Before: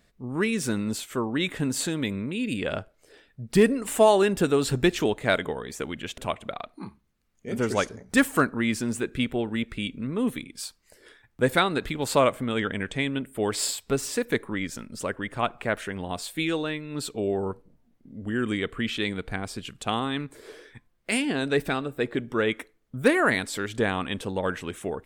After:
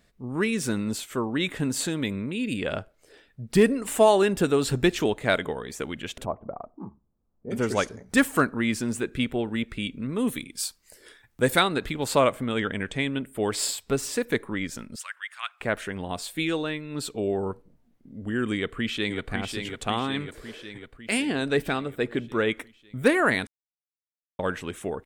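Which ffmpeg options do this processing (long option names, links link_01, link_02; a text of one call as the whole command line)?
ffmpeg -i in.wav -filter_complex "[0:a]asplit=3[link_01][link_02][link_03];[link_01]afade=type=out:start_time=6.24:duration=0.02[link_04];[link_02]lowpass=frequency=1000:width=0.5412,lowpass=frequency=1000:width=1.3066,afade=type=in:start_time=6.24:duration=0.02,afade=type=out:start_time=7.5:duration=0.02[link_05];[link_03]afade=type=in:start_time=7.5:duration=0.02[link_06];[link_04][link_05][link_06]amix=inputs=3:normalize=0,asettb=1/sr,asplit=3[link_07][link_08][link_09];[link_07]atrim=end=10.094[link_10];[link_08]atrim=start=10.09:end=11.68,asetpts=PTS-STARTPTS,afade=type=in:duration=0.004:curve=qsin,afade=type=out:start_time=1.586:duration=0.004:curve=qsin,highshelf=frequency=4700:gain=8.5[link_11];[link_09]atrim=start=11.676[link_12];[link_10][link_11]acrossfade=duration=0.004:curve1=hsin:curve2=qsin[link_13];[link_13][link_12]acrossfade=duration=0.004:curve1=qsin:curve2=hsin,asettb=1/sr,asplit=3[link_14][link_15][link_16];[link_14]atrim=end=14.964[link_17];[link_15]atrim=start=14.96:end=15.61,asetpts=PTS-STARTPTS,afade=type=in:duration=0.004:curve=qsin,afade=type=out:start_time=0.646:duration=0.004:curve=qsin,highpass=frequency=1400:width=0.5412,highpass=frequency=1400:width=1.3066[link_18];[link_16]atrim=start=15.606[link_19];[link_17][link_18]acrossfade=duration=0.004:curve1=hsin:curve2=qsin[link_20];[link_20][link_19]acrossfade=duration=0.004:curve1=qsin:curve2=hsin,asplit=2[link_21][link_22];[link_22]afade=type=in:start_time=18.55:duration=0.01,afade=type=out:start_time=19.31:duration=0.01,aecho=0:1:550|1100|1650|2200|2750|3300|3850|4400|4950|5500:0.501187|0.325772|0.211752|0.137639|0.0894651|0.0581523|0.037799|0.0245693|0.0159701|0.0103805[link_23];[link_21][link_23]amix=inputs=2:normalize=0,asplit=3[link_24][link_25][link_26];[link_24]atrim=end=23.47,asetpts=PTS-STARTPTS,afade=type=out:start_time=23.466:duration=0.004:curve=hsin[link_27];[link_25]atrim=start=23.47:end=24.39,asetpts=PTS-STARTPTS,volume=0[link_28];[link_26]atrim=start=24.39,asetpts=PTS-STARTPTS,afade=type=in:duration=0.004:curve=hsin[link_29];[link_27][link_28][link_29]concat=n=3:v=0:a=1" out.wav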